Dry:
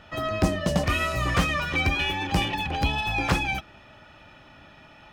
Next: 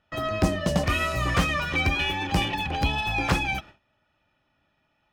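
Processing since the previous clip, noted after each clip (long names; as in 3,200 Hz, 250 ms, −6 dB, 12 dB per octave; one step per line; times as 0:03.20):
noise gate with hold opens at −36 dBFS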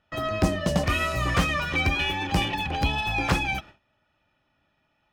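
no processing that can be heard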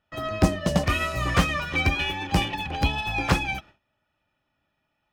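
expander for the loud parts 1.5 to 1, over −34 dBFS
level +3.5 dB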